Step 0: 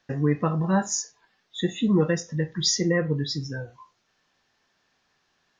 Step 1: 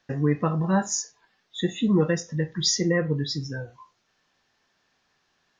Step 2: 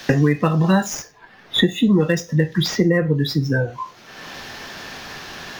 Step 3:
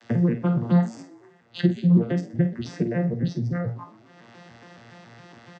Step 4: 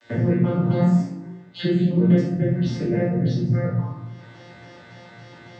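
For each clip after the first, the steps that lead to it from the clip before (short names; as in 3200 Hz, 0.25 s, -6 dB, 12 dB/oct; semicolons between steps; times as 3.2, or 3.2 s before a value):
nothing audible
median filter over 5 samples; bell 1100 Hz -2 dB; three-band squash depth 100%; gain +6.5 dB
arpeggiated vocoder bare fifth, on A#2, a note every 0.14 s; doubler 50 ms -9.5 dB; frequency-shifting echo 0.124 s, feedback 60%, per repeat +50 Hz, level -23 dB; gain -4 dB
shoebox room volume 140 m³, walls mixed, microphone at 2.6 m; gain -6 dB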